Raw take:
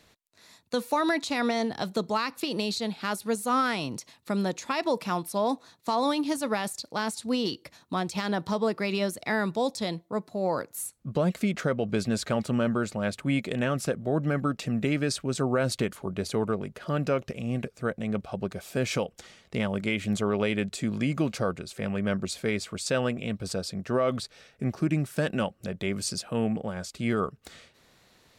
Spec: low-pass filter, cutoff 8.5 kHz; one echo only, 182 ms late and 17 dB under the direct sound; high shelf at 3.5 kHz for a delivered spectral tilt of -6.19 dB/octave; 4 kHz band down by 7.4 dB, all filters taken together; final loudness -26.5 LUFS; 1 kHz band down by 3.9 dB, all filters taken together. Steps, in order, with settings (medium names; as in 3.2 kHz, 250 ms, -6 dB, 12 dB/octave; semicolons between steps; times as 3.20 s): low-pass 8.5 kHz; peaking EQ 1 kHz -4.5 dB; treble shelf 3.5 kHz -3.5 dB; peaking EQ 4 kHz -6.5 dB; delay 182 ms -17 dB; trim +4 dB